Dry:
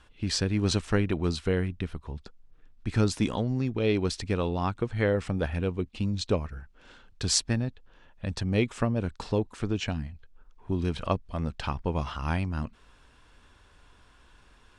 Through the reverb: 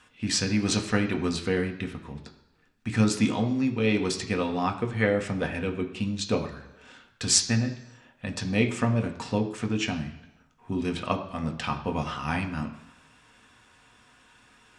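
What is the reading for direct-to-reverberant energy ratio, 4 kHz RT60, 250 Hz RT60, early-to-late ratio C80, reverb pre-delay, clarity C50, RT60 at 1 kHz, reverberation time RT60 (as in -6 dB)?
3.5 dB, 0.95 s, 0.95 s, 13.0 dB, 3 ms, 11.0 dB, 1.0 s, 1.0 s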